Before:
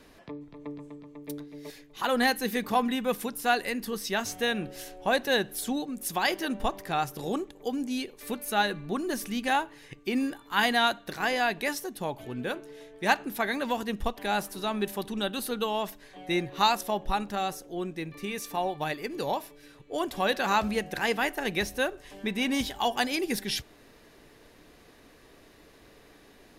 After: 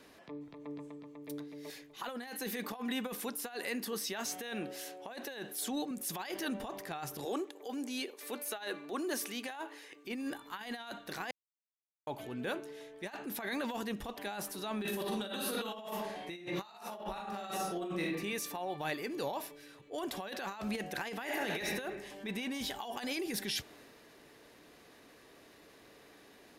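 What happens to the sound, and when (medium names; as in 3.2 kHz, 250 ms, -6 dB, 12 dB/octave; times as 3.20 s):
2.27–5.91 s: high-pass 200 Hz
7.25–10.05 s: high-pass 280 Hz 24 dB/octave
11.31–12.07 s: mute
14.79–18.04 s: reverb throw, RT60 0.81 s, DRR -3.5 dB
21.23–21.66 s: reverb throw, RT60 1.1 s, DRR 2 dB
whole clip: high-pass 190 Hz 6 dB/octave; compressor with a negative ratio -31 dBFS, ratio -0.5; transient shaper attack -5 dB, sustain +3 dB; trim -5.5 dB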